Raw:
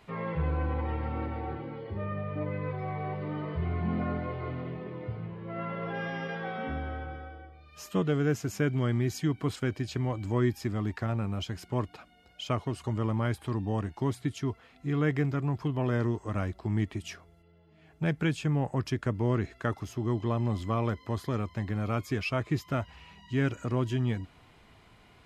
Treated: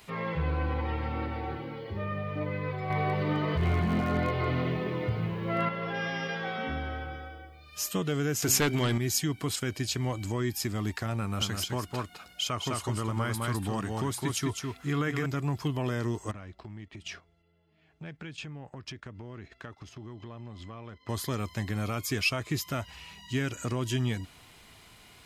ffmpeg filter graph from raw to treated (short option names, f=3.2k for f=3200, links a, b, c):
-filter_complex "[0:a]asettb=1/sr,asplit=3[a][b][c];[a]atrim=end=2.904[d];[b]atrim=start=2.9:end=5.69,asetpts=PTS-STARTPTS,afade=t=in:d=0.004:c=qsin,afade=t=out:st=2.786:d=0.004:c=qsin,acontrast=85,aeval=exprs='clip(val(0),-1,0.106)':c=same[e];[c]atrim=start=5.686[f];[d][e]acrossfade=d=0.004:c1=hsin:c2=qsin[g];[g][f]acrossfade=d=0.004:c1=qsin:c2=hsin,asettb=1/sr,asplit=3[h][i][j];[h]atrim=end=8.424[k];[i]atrim=start=8.42:end=8.98,asetpts=PTS-STARTPTS,afade=t=in:d=0.004:c=qsin,afade=t=out:st=0.556:d=0.004:c=qsin,bass=f=250:g=-5,treble=f=4k:g=-3,bandreject=f=131.9:t=h:w=4,bandreject=f=263.8:t=h:w=4,bandreject=f=395.7:t=h:w=4,bandreject=f=527.6:t=h:w=4,bandreject=f=659.5:t=h:w=4,bandreject=f=791.4:t=h:w=4,bandreject=f=923.3:t=h:w=4,aeval=exprs='0.178*sin(PI/2*2.24*val(0)/0.178)':c=same[l];[j]atrim=start=8.976[m];[k][l]acrossfade=d=0.004:c1=hsin:c2=qsin[n];[n][m]acrossfade=d=0.004:c1=qsin:c2=hsin,asettb=1/sr,asplit=3[o][p][q];[o]atrim=end=11.204[r];[p]atrim=start=11.2:end=15.26,asetpts=PTS-STARTPTS,afade=t=in:d=0.004:c=qsin,afade=t=out:st=4.056:d=0.004:c=qsin,equalizer=f=1.3k:t=o:w=0.79:g=5.5,aecho=1:1:208:0.562,atrim=end_sample=179046[s];[q]atrim=start=15.256[t];[r][s]acrossfade=d=0.004:c1=hsin:c2=qsin[u];[u][t]acrossfade=d=0.004:c1=qsin:c2=hsin,asettb=1/sr,asplit=3[v][w][x];[v]atrim=end=16.314[y];[w]atrim=start=16.31:end=21.09,asetpts=PTS-STARTPTS,afade=t=in:d=0.004:c=qsin,afade=t=out:st=4.776:d=0.004:c=qsin,lowpass=3.5k,acompressor=threshold=-42dB:ratio=4:attack=3.2:release=140:knee=1:detection=peak,agate=range=-9dB:threshold=-53dB:ratio=16:release=100:detection=peak[z];[x]atrim=start=21.086[aa];[y][z]acrossfade=d=0.004:c1=hsin:c2=qsin[ab];[ab][aa]acrossfade=d=0.004:c1=qsin:c2=hsin,highshelf=f=6.2k:g=8,alimiter=limit=-20.5dB:level=0:latency=1:release=115,highshelf=f=2.5k:g=10.5"